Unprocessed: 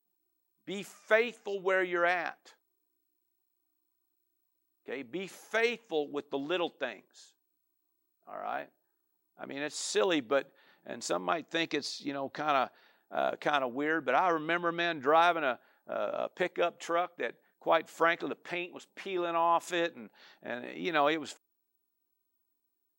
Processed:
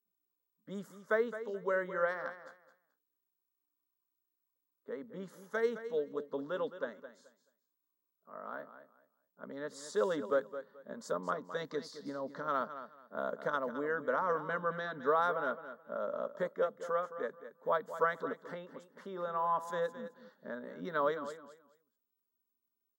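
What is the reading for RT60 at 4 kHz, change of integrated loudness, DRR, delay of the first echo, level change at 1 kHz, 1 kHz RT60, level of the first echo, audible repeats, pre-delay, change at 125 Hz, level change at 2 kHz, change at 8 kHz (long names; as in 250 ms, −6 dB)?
no reverb audible, −4.5 dB, no reverb audible, 215 ms, −5.0 dB, no reverb audible, −12.0 dB, 2, no reverb audible, −1.5 dB, −7.0 dB, −12.0 dB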